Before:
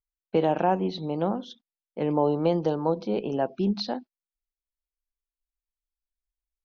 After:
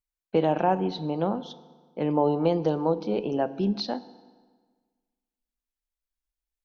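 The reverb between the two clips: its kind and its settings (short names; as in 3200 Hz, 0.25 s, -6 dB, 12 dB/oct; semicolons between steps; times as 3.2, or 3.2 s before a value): FDN reverb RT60 1.5 s, low-frequency decay 1.1×, high-frequency decay 0.8×, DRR 14.5 dB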